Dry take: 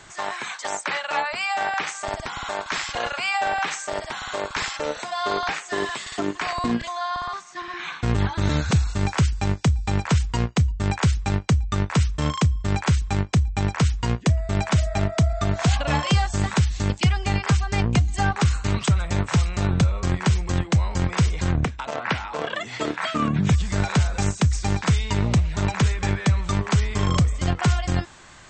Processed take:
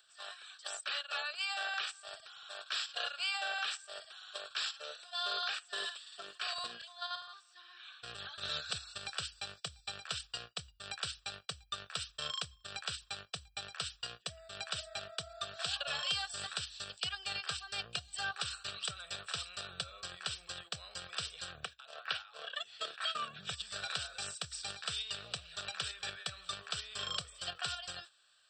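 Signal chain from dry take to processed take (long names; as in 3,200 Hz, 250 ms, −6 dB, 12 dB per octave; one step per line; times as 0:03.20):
noise gate −28 dBFS, range −9 dB
first difference
in parallel at 0 dB: output level in coarse steps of 21 dB
on the sum: phaser with its sweep stopped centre 1,400 Hz, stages 8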